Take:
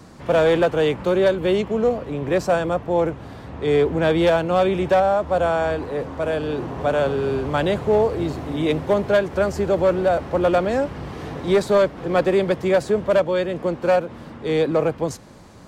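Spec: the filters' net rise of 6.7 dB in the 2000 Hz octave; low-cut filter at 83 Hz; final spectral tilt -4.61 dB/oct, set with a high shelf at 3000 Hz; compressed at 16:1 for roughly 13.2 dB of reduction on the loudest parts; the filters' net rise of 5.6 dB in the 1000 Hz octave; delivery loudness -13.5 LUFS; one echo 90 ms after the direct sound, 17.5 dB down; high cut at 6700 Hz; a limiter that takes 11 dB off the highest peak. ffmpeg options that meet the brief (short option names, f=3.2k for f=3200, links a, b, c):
-af "highpass=83,lowpass=6.7k,equalizer=f=1k:t=o:g=6.5,equalizer=f=2k:t=o:g=4.5,highshelf=f=3k:g=5.5,acompressor=threshold=-23dB:ratio=16,alimiter=limit=-23.5dB:level=0:latency=1,aecho=1:1:90:0.133,volume=18.5dB"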